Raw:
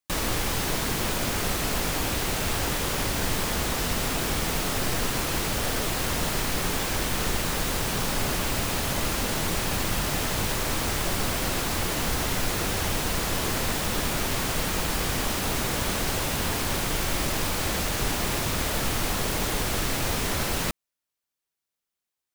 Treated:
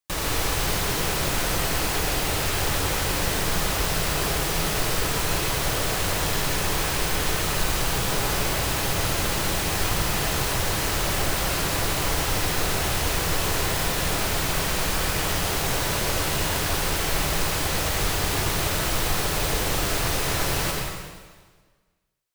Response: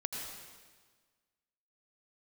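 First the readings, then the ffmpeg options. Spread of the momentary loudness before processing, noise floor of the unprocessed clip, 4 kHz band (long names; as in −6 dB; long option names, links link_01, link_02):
0 LU, below −85 dBFS, +3.0 dB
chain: -filter_complex "[0:a]equalizer=frequency=240:width_type=o:width=0.22:gain=-15[link_01];[1:a]atrim=start_sample=2205[link_02];[link_01][link_02]afir=irnorm=-1:irlink=0,volume=1dB"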